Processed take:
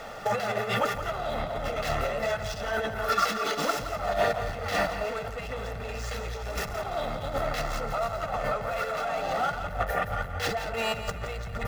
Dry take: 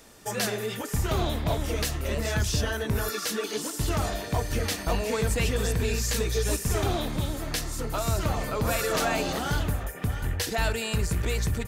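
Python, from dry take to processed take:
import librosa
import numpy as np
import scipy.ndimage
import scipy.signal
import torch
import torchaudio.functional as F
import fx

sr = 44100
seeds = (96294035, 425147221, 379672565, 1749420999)

y = scipy.ndimage.median_filter(x, 5, mode='constant')
y = fx.peak_eq(y, sr, hz=70.0, db=-13.0, octaves=0.22)
y = 10.0 ** (-29.5 / 20.0) * np.tanh(y / 10.0 ** (-29.5 / 20.0))
y = fx.over_compress(y, sr, threshold_db=-37.0, ratio=-0.5)
y = fx.peak_eq(y, sr, hz=960.0, db=12.0, octaves=2.7)
y = y + 0.65 * np.pad(y, (int(1.5 * sr / 1000.0), 0))[:len(y)]
y = fx.echo_feedback(y, sr, ms=170, feedback_pct=36, wet_db=-10.5)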